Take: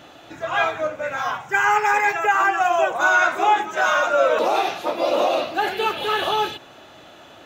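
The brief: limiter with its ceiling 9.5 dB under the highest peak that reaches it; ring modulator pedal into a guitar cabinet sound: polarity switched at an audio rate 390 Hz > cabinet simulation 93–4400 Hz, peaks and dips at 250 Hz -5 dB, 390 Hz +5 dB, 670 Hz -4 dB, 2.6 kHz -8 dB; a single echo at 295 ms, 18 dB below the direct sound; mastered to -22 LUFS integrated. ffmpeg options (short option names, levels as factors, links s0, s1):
-af "alimiter=limit=0.158:level=0:latency=1,aecho=1:1:295:0.126,aeval=exprs='val(0)*sgn(sin(2*PI*390*n/s))':c=same,highpass=93,equalizer=f=250:t=q:w=4:g=-5,equalizer=f=390:t=q:w=4:g=5,equalizer=f=670:t=q:w=4:g=-4,equalizer=f=2600:t=q:w=4:g=-8,lowpass=f=4400:w=0.5412,lowpass=f=4400:w=1.3066,volume=1.5"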